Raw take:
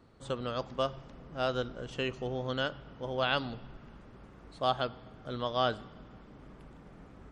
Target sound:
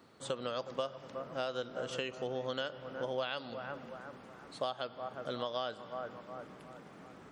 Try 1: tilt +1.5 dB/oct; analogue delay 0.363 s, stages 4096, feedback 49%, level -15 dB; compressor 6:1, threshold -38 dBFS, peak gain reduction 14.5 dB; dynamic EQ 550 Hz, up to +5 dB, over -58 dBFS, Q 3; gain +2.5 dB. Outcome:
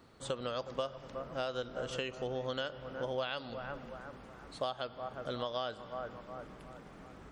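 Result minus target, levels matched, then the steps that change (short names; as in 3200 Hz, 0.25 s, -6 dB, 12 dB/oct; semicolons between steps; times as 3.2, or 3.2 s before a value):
125 Hz band +3.0 dB
add after dynamic EQ: HPF 130 Hz 12 dB/oct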